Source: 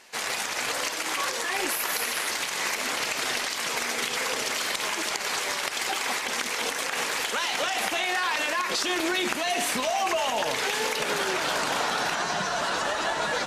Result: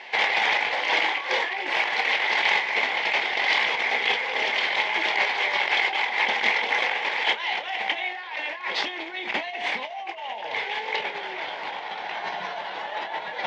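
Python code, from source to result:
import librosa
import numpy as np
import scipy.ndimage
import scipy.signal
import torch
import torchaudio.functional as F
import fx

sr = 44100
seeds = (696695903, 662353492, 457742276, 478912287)

y = fx.bass_treble(x, sr, bass_db=-6, treble_db=-12)
y = fx.over_compress(y, sr, threshold_db=-34.0, ratio=-0.5)
y = fx.cabinet(y, sr, low_hz=110.0, low_slope=24, high_hz=5100.0, hz=(150.0, 260.0, 830.0, 1300.0, 2100.0, 3300.0), db=(-4, -7, 9, -9, 10, 7))
y = fx.doubler(y, sr, ms=27.0, db=-10.0)
y = y * 10.0 ** (4.0 / 20.0)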